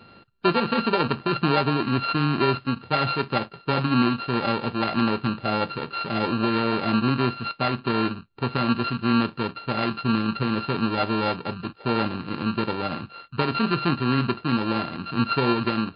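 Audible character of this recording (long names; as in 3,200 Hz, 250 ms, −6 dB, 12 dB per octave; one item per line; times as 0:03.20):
a buzz of ramps at a fixed pitch in blocks of 32 samples
MP3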